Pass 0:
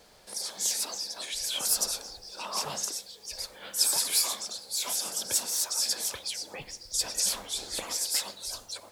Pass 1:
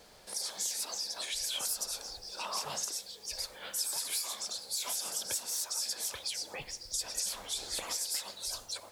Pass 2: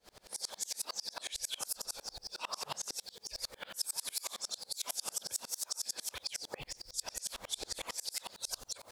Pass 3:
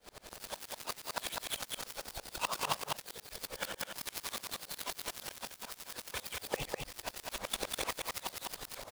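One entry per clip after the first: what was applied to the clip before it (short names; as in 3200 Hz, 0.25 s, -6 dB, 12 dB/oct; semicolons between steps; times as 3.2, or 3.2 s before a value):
compressor 6:1, threshold -32 dBFS, peak gain reduction 12 dB; dynamic EQ 230 Hz, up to -5 dB, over -58 dBFS, Q 0.76
in parallel at -2.5 dB: negative-ratio compressor -40 dBFS; on the sum: dB-ramp tremolo swelling 11 Hz, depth 33 dB; gain +1 dB
switching dead time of 0.089 ms; echo 0.201 s -3 dB; gain +7.5 dB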